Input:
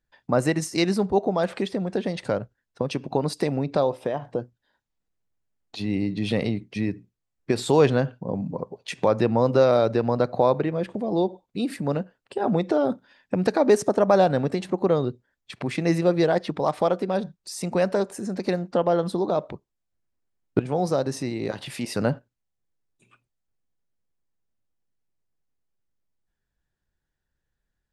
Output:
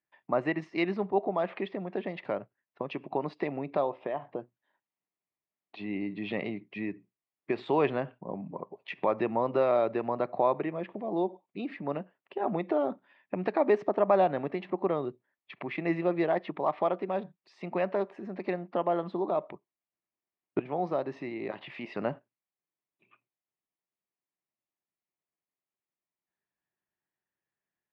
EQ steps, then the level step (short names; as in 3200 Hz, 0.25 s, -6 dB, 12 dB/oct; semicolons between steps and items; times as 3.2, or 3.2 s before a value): speaker cabinet 230–2500 Hz, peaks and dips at 250 Hz -5 dB, 490 Hz -9 dB, 830 Hz -3 dB, 1500 Hz -10 dB; low shelf 360 Hz -6 dB; 0.0 dB